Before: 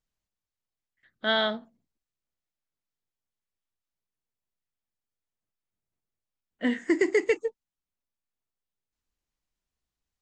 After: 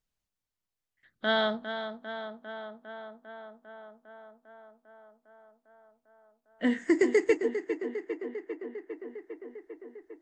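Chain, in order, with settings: dynamic EQ 2900 Hz, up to -5 dB, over -38 dBFS, Q 0.92; tape echo 0.401 s, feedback 81%, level -8 dB, low-pass 3300 Hz

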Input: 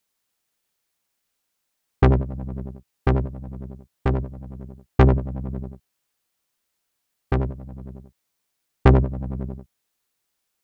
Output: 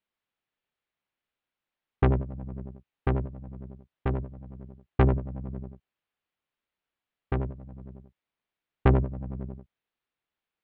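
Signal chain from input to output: LPF 3400 Hz 24 dB/oct; gain -6.5 dB

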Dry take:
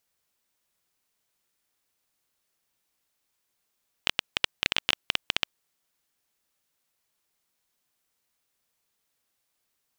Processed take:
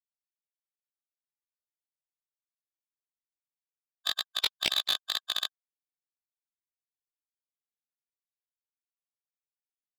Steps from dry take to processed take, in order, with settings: per-bin expansion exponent 3; chorus 2.1 Hz, delay 16.5 ms, depth 4.1 ms; overdrive pedal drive 23 dB, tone 6000 Hz, clips at -11 dBFS; formant shift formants +4 st

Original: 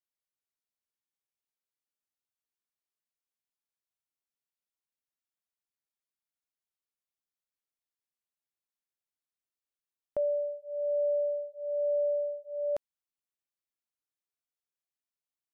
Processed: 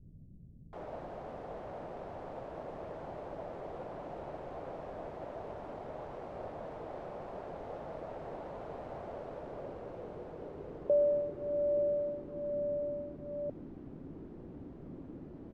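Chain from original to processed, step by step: requantised 6-bit, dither triangular; bell 160 Hz +4.5 dB 0.34 oct; bands offset in time lows, highs 0.73 s, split 190 Hz; low-pass sweep 630 Hz -> 290 Hz, 9.03–12.91; gain +2.5 dB

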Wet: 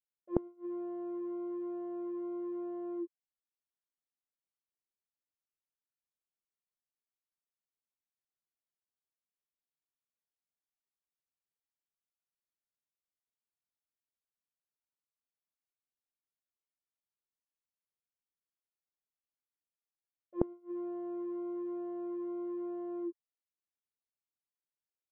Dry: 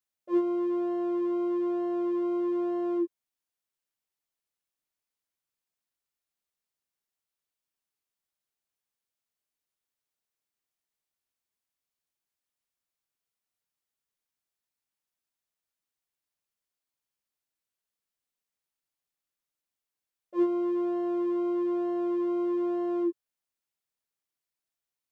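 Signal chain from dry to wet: gate with hold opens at -17 dBFS; high shelf 2500 Hz -10.5 dB; flipped gate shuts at -32 dBFS, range -30 dB; air absorption 320 m; gain +11.5 dB

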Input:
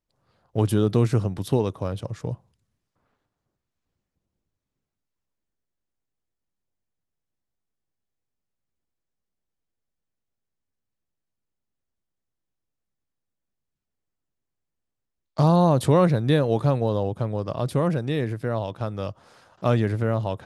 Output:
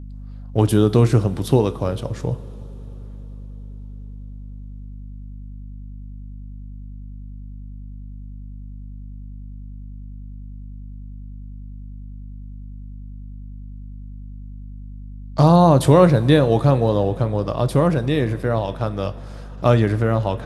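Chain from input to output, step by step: hum 50 Hz, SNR 13 dB; two-slope reverb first 0.32 s, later 4.8 s, from -18 dB, DRR 11 dB; gain +5.5 dB

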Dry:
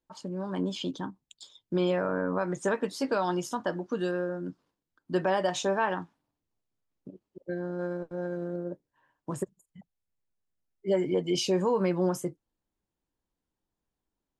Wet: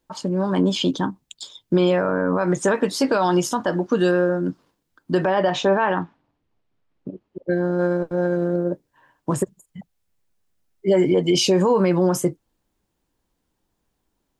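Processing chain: 5.27–7.5 LPF 3200 Hz 12 dB/oct; maximiser +21 dB; gain -8.5 dB

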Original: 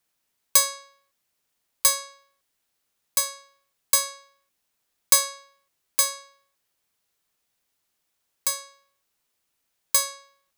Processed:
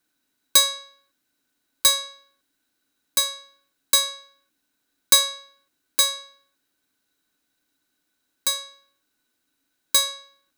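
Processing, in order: de-hum 218.2 Hz, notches 26; small resonant body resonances 280/1500/3900 Hz, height 17 dB, ringing for 55 ms

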